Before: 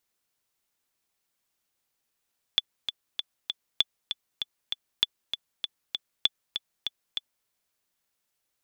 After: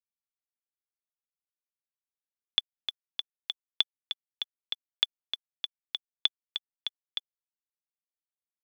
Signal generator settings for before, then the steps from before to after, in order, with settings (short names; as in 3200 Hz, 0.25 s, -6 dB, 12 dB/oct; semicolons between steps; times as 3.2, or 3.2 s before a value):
metronome 196 bpm, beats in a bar 4, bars 4, 3460 Hz, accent 8.5 dB -7.5 dBFS
LPF 5000 Hz 12 dB/oct; bit-crush 11-bit; HPF 260 Hz